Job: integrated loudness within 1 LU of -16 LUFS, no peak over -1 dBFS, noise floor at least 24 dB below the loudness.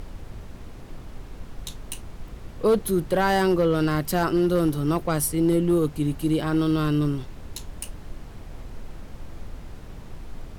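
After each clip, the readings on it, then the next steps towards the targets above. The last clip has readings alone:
clipped samples 0.6%; clipping level -14.0 dBFS; noise floor -41 dBFS; noise floor target -47 dBFS; loudness -23.0 LUFS; peak level -14.0 dBFS; loudness target -16.0 LUFS
-> clip repair -14 dBFS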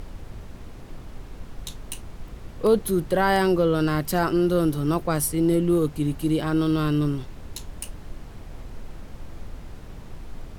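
clipped samples 0.0%; noise floor -41 dBFS; noise floor target -47 dBFS
-> noise print and reduce 6 dB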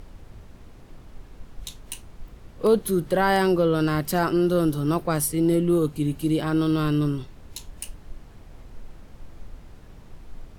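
noise floor -47 dBFS; loudness -23.0 LUFS; peak level -8.5 dBFS; loudness target -16.0 LUFS
-> trim +7 dB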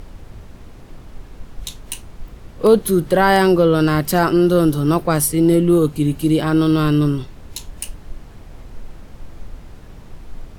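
loudness -16.0 LUFS; peak level -1.5 dBFS; noise floor -40 dBFS

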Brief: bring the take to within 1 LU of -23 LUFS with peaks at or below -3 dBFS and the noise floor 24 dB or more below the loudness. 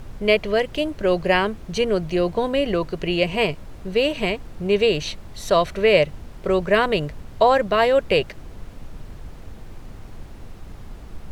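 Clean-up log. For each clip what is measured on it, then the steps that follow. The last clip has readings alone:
noise floor -40 dBFS; noise floor target -45 dBFS; loudness -21.0 LUFS; peak level -4.0 dBFS; loudness target -23.0 LUFS
-> noise print and reduce 6 dB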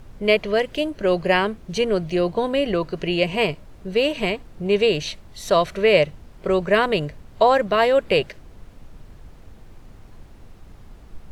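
noise floor -46 dBFS; loudness -21.0 LUFS; peak level -4.0 dBFS; loudness target -23.0 LUFS
-> trim -2 dB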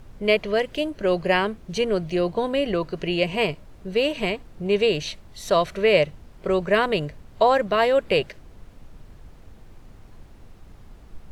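loudness -23.0 LUFS; peak level -6.0 dBFS; noise floor -48 dBFS

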